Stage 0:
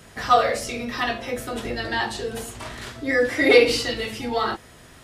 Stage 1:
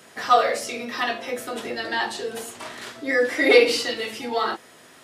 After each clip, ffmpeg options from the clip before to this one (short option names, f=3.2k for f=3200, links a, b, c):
-af "highpass=260"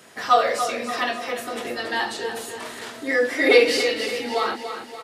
-af "aecho=1:1:287|574|861|1148|1435|1722:0.355|0.177|0.0887|0.0444|0.0222|0.0111"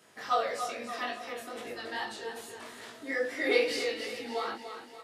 -af "flanger=delay=17.5:depth=4.3:speed=2.4,volume=-8dB"